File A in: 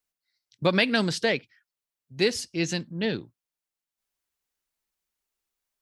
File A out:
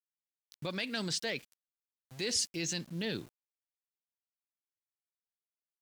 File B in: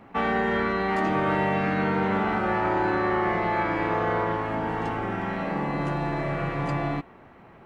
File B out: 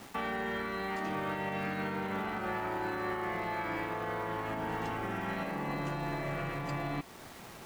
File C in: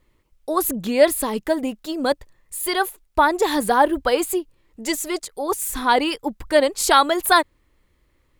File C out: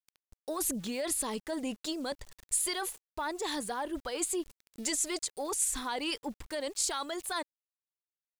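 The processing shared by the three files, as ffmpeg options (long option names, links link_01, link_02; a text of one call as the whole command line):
ffmpeg -i in.wav -filter_complex "[0:a]asplit=2[link_01][link_02];[link_02]asoftclip=type=tanh:threshold=-18dB,volume=-11dB[link_03];[link_01][link_03]amix=inputs=2:normalize=0,lowpass=frequency=9300:width=0.5412,lowpass=frequency=9300:width=1.3066,areverse,acompressor=threshold=-26dB:ratio=10,areverse,aeval=exprs='val(0)*gte(abs(val(0)),0.00316)':channel_layout=same,alimiter=level_in=2dB:limit=-24dB:level=0:latency=1:release=262,volume=-2dB,highshelf=frequency=3300:gain=10.5,volume=-1.5dB" out.wav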